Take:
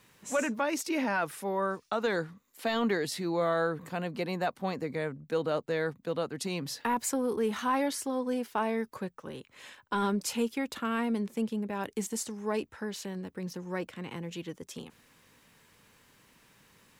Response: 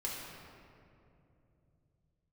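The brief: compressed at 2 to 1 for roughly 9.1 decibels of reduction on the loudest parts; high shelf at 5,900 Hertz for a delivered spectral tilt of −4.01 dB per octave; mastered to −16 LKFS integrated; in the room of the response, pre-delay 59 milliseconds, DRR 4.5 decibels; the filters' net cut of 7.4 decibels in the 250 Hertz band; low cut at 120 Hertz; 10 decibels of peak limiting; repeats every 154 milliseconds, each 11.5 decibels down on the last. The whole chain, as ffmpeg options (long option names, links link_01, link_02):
-filter_complex "[0:a]highpass=120,equalizer=frequency=250:width_type=o:gain=-9,highshelf=frequency=5900:gain=8,acompressor=threshold=-42dB:ratio=2,alimiter=level_in=9dB:limit=-24dB:level=0:latency=1,volume=-9dB,aecho=1:1:154|308|462:0.266|0.0718|0.0194,asplit=2[link_01][link_02];[1:a]atrim=start_sample=2205,adelay=59[link_03];[link_02][link_03]afir=irnorm=-1:irlink=0,volume=-7dB[link_04];[link_01][link_04]amix=inputs=2:normalize=0,volume=26dB"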